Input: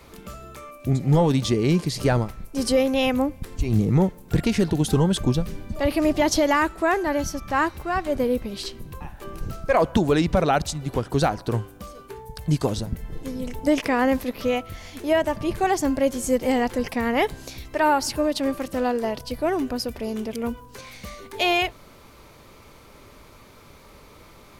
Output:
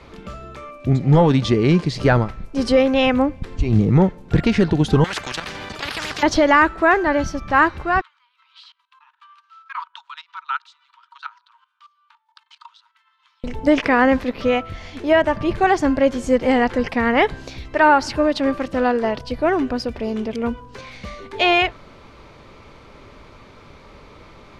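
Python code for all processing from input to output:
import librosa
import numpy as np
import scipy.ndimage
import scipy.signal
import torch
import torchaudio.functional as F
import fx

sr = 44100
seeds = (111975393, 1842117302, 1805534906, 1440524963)

y = fx.chain(x, sr, fx.highpass(hz=120.0, slope=12),
    fx.level_steps(step_db=11),
    fx.spectral_comp(ratio=10.0), at=(5.04, 6.23))
y = fx.chain(y, sr, fx.level_steps(step_db=19),
    fx.cheby_ripple_highpass(hz=910.0, ripple_db=9),
    fx.high_shelf(hz=3600.0, db=-10.0), at=(8.01, 13.44))
y = scipy.signal.sosfilt(scipy.signal.butter(2, 4100.0, 'lowpass', fs=sr, output='sos'), y)
y = fx.dynamic_eq(y, sr, hz=1500.0, q=1.5, threshold_db=-38.0, ratio=4.0, max_db=5)
y = F.gain(torch.from_numpy(y), 4.5).numpy()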